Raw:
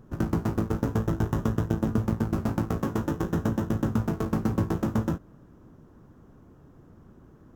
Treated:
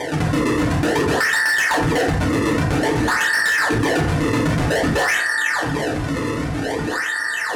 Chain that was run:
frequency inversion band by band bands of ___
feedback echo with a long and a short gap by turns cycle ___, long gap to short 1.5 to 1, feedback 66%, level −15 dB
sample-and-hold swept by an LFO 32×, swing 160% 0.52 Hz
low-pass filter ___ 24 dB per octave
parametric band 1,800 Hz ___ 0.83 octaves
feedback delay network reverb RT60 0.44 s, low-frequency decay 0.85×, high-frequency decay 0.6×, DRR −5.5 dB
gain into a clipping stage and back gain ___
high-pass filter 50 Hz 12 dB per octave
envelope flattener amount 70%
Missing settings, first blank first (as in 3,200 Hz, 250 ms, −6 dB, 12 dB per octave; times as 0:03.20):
2,000 Hz, 707 ms, 11,000 Hz, +5 dB, 15.5 dB